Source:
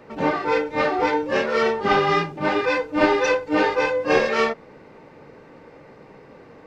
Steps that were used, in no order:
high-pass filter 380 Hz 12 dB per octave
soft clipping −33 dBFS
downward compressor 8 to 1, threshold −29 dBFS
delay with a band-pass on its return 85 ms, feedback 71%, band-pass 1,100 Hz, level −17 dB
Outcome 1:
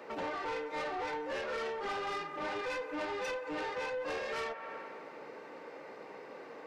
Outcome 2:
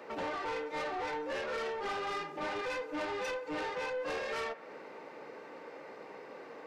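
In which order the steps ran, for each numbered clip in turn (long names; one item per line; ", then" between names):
delay with a band-pass on its return, then downward compressor, then high-pass filter, then soft clipping
high-pass filter, then downward compressor, then soft clipping, then delay with a band-pass on its return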